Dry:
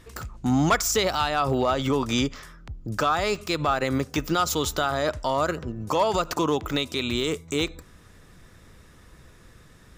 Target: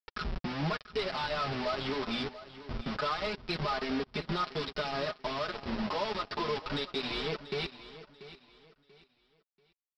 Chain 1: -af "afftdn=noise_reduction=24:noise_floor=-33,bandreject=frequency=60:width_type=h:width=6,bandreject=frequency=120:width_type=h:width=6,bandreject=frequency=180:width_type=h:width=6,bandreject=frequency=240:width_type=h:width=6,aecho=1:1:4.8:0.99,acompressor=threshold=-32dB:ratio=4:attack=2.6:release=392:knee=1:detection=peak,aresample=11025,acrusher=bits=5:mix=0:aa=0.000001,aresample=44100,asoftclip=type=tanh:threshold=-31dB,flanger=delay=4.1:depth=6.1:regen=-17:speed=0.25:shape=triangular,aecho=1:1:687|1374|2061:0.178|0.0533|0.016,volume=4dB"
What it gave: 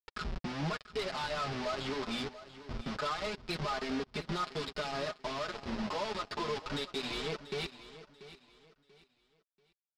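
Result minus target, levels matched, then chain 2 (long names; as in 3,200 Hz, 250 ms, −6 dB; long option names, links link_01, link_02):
soft clipping: distortion +12 dB
-af "afftdn=noise_reduction=24:noise_floor=-33,bandreject=frequency=60:width_type=h:width=6,bandreject=frequency=120:width_type=h:width=6,bandreject=frequency=180:width_type=h:width=6,bandreject=frequency=240:width_type=h:width=6,aecho=1:1:4.8:0.99,acompressor=threshold=-32dB:ratio=4:attack=2.6:release=392:knee=1:detection=peak,aresample=11025,acrusher=bits=5:mix=0:aa=0.000001,aresample=44100,asoftclip=type=tanh:threshold=-21.5dB,flanger=delay=4.1:depth=6.1:regen=-17:speed=0.25:shape=triangular,aecho=1:1:687|1374|2061:0.178|0.0533|0.016,volume=4dB"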